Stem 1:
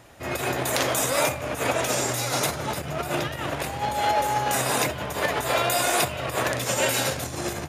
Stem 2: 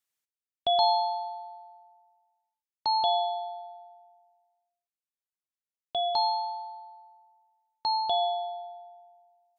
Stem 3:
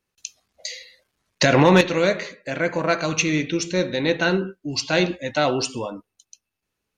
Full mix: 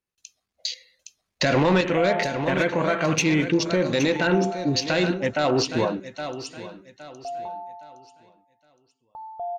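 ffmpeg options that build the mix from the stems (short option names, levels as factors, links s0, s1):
-filter_complex "[1:a]lowpass=f=1100:w=0.5412,lowpass=f=1100:w=1.3066,aecho=1:1:1.6:0.55,adelay=1300,volume=0.473[s0];[2:a]acontrast=59,volume=0.944,asplit=2[s1][s2];[s2]volume=0.15[s3];[s1]afwtdn=0.0398,alimiter=limit=0.251:level=0:latency=1:release=115,volume=1[s4];[s3]aecho=0:1:815|1630|2445|3260:1|0.31|0.0961|0.0298[s5];[s0][s4][s5]amix=inputs=3:normalize=0"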